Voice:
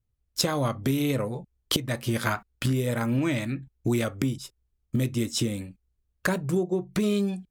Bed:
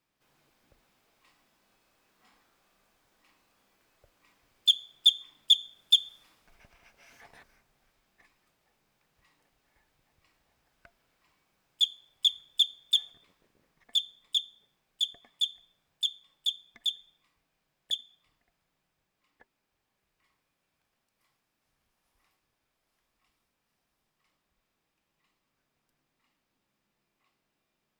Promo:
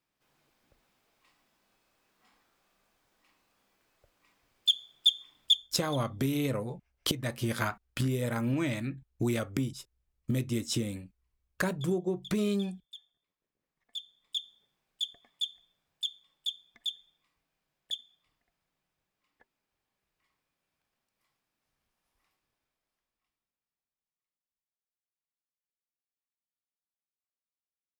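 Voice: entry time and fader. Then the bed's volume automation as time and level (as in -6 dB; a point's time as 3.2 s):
5.35 s, -4.5 dB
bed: 5.53 s -3 dB
5.79 s -23.5 dB
13.26 s -23.5 dB
14.48 s -4.5 dB
22.54 s -4.5 dB
24.79 s -33 dB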